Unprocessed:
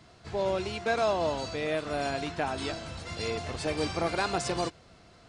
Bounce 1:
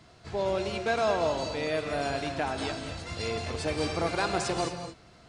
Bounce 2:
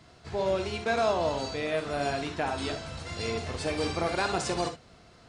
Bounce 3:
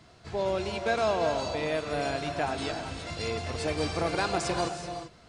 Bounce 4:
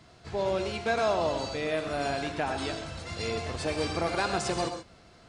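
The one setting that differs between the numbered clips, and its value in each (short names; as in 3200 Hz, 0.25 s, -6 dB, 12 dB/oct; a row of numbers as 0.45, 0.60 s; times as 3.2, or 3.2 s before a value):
non-linear reverb, gate: 260, 80, 410, 150 ms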